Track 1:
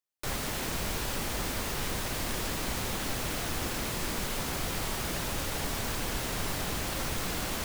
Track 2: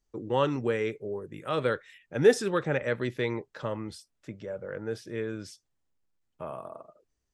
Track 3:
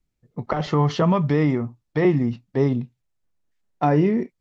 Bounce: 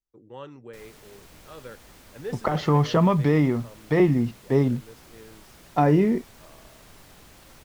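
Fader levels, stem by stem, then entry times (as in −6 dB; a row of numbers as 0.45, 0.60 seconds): −17.5, −15.0, −0.5 decibels; 0.50, 0.00, 1.95 seconds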